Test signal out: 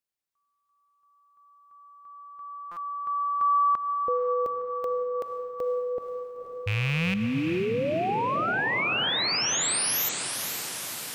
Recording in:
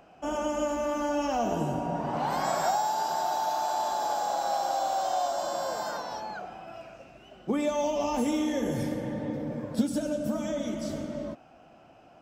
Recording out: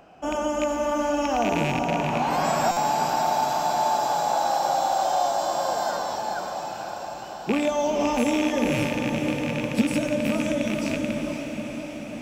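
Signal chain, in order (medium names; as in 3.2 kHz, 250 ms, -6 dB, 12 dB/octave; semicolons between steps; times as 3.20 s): rattle on loud lows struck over -33 dBFS, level -22 dBFS; echo that smears into a reverb 496 ms, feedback 69%, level -7 dB; buffer glitch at 2.71 s, samples 256, times 9; trim +4 dB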